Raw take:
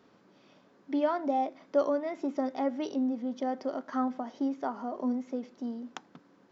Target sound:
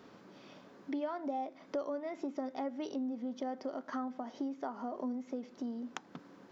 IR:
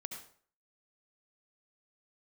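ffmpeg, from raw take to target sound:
-af "acompressor=threshold=-45dB:ratio=3,volume=5.5dB"

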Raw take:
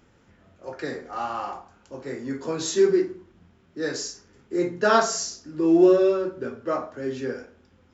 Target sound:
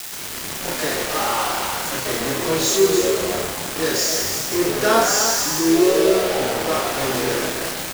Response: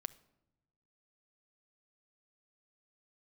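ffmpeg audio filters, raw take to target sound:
-filter_complex "[0:a]aeval=exprs='val(0)+0.5*0.0708*sgn(val(0))':channel_layout=same,highshelf=frequency=3100:gain=5,asplit=2[link_01][link_02];[link_02]asplit=8[link_03][link_04][link_05][link_06][link_07][link_08][link_09][link_10];[link_03]adelay=127,afreqshift=80,volume=-8.5dB[link_11];[link_04]adelay=254,afreqshift=160,volume=-12.5dB[link_12];[link_05]adelay=381,afreqshift=240,volume=-16.5dB[link_13];[link_06]adelay=508,afreqshift=320,volume=-20.5dB[link_14];[link_07]adelay=635,afreqshift=400,volume=-24.6dB[link_15];[link_08]adelay=762,afreqshift=480,volume=-28.6dB[link_16];[link_09]adelay=889,afreqshift=560,volume=-32.6dB[link_17];[link_10]adelay=1016,afreqshift=640,volume=-36.6dB[link_18];[link_11][link_12][link_13][link_14][link_15][link_16][link_17][link_18]amix=inputs=8:normalize=0[link_19];[link_01][link_19]amix=inputs=2:normalize=0,acrusher=bits=3:mix=0:aa=0.000001,asplit=2[link_20][link_21];[link_21]adelay=31,volume=-3.5dB[link_22];[link_20][link_22]amix=inputs=2:normalize=0,asplit=2[link_23][link_24];[link_24]aecho=0:1:304:0.376[link_25];[link_23][link_25]amix=inputs=2:normalize=0,volume=-2.5dB"

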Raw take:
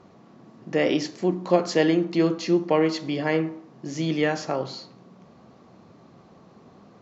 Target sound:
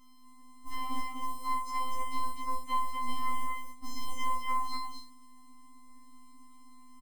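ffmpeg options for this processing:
ffmpeg -i in.wav -filter_complex "[0:a]bandreject=frequency=3700:width=13,bandreject=frequency=67.48:width_type=h:width=4,bandreject=frequency=134.96:width_type=h:width=4,bandreject=frequency=202.44:width_type=h:width=4,acrossover=split=150|320|1000[link_01][link_02][link_03][link_04];[link_01]acompressor=threshold=-43dB:ratio=4[link_05];[link_02]acompressor=threshold=-34dB:ratio=4[link_06];[link_03]acompressor=threshold=-22dB:ratio=4[link_07];[link_04]acompressor=threshold=-45dB:ratio=4[link_08];[link_05][link_06][link_07][link_08]amix=inputs=4:normalize=0,lowshelf=frequency=230:width_type=q:width=3:gain=10.5,acompressor=threshold=-24dB:ratio=16,acrusher=bits=8:mix=0:aa=0.000001,aeval=exprs='0.158*(cos(1*acos(clip(val(0)/0.158,-1,1)))-cos(1*PI/2))+0.0178*(cos(5*acos(clip(val(0)/0.158,-1,1)))-cos(5*PI/2))+0.0447*(cos(7*acos(clip(val(0)/0.158,-1,1)))-cos(7*PI/2))':channel_layout=same,afftfilt=real='hypot(re,im)*cos(PI*b)':imag='0':win_size=512:overlap=0.75,aeval=exprs='val(0)+0.00112*(sin(2*PI*50*n/s)+sin(2*PI*2*50*n/s)/2+sin(2*PI*3*50*n/s)/3+sin(2*PI*4*50*n/s)/4+sin(2*PI*5*50*n/s)/5)':channel_layout=same,asplit=2[link_09][link_10];[link_10]aecho=0:1:52.48|244.9:0.631|0.708[link_11];[link_09][link_11]amix=inputs=2:normalize=0,afftfilt=real='re*3.46*eq(mod(b,12),0)':imag='im*3.46*eq(mod(b,12),0)':win_size=2048:overlap=0.75" out.wav

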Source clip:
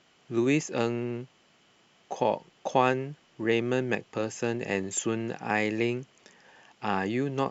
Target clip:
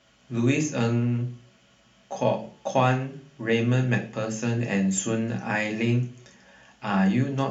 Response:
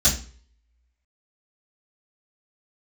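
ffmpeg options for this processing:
-filter_complex "[0:a]asplit=2[link_01][link_02];[1:a]atrim=start_sample=2205,asetrate=41454,aresample=44100,highshelf=frequency=5900:gain=-7.5[link_03];[link_02][link_03]afir=irnorm=-1:irlink=0,volume=-15.5dB[link_04];[link_01][link_04]amix=inputs=2:normalize=0"

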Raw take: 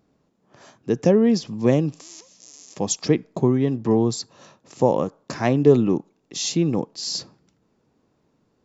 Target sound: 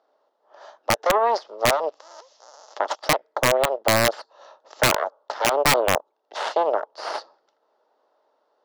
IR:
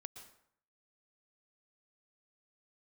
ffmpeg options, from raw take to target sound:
-filter_complex "[0:a]asplit=2[link_01][link_02];[link_02]alimiter=limit=-14.5dB:level=0:latency=1,volume=0dB[link_03];[link_01][link_03]amix=inputs=2:normalize=0,aeval=exprs='0.891*(cos(1*acos(clip(val(0)/0.891,-1,1)))-cos(1*PI/2))+0.282*(cos(4*acos(clip(val(0)/0.891,-1,1)))-cos(4*PI/2))+0.178*(cos(7*acos(clip(val(0)/0.891,-1,1)))-cos(7*PI/2))+0.0708*(cos(8*acos(clip(val(0)/0.891,-1,1)))-cos(8*PI/2))':channel_layout=same,highpass=frequency=470:width=0.5412,highpass=frequency=470:width=1.3066,equalizer=frequency=610:width_type=q:width=4:gain=8,equalizer=frequency=870:width_type=q:width=4:gain=7,equalizer=frequency=1300:width_type=q:width=4:gain=4,equalizer=frequency=2400:width_type=q:width=4:gain=-10,lowpass=frequency=4900:width=0.5412,lowpass=frequency=4900:width=1.3066,aeval=exprs='(mod(1.33*val(0)+1,2)-1)/1.33':channel_layout=same,acompressor=threshold=-37dB:ratio=1.5,volume=3dB"

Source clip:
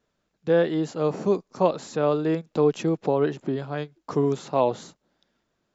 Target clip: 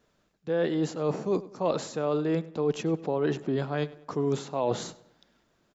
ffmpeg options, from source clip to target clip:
ffmpeg -i in.wav -filter_complex "[0:a]areverse,acompressor=threshold=-30dB:ratio=6,areverse,asplit=2[link_01][link_02];[link_02]adelay=99,lowpass=frequency=4000:poles=1,volume=-18dB,asplit=2[link_03][link_04];[link_04]adelay=99,lowpass=frequency=4000:poles=1,volume=0.44,asplit=2[link_05][link_06];[link_06]adelay=99,lowpass=frequency=4000:poles=1,volume=0.44,asplit=2[link_07][link_08];[link_08]adelay=99,lowpass=frequency=4000:poles=1,volume=0.44[link_09];[link_01][link_03][link_05][link_07][link_09]amix=inputs=5:normalize=0,volume=5.5dB" out.wav

